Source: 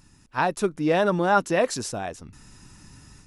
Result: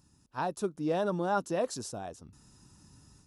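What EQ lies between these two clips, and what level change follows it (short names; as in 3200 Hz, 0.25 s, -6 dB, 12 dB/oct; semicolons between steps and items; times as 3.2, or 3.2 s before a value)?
HPF 48 Hz; bell 2100 Hz -11 dB 0.91 oct; -8.0 dB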